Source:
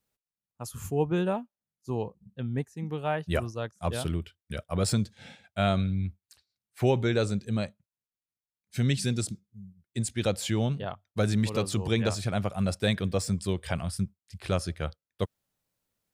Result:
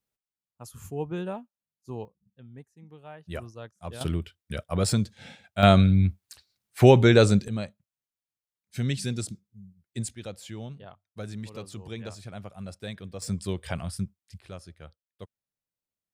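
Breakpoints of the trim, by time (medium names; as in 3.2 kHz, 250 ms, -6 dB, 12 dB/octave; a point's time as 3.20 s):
-5.5 dB
from 2.05 s -15.5 dB
from 3.25 s -8 dB
from 4.01 s +2 dB
from 5.63 s +9 dB
from 7.48 s -2 dB
from 10.15 s -11.5 dB
from 13.22 s -1.5 dB
from 14.41 s -14 dB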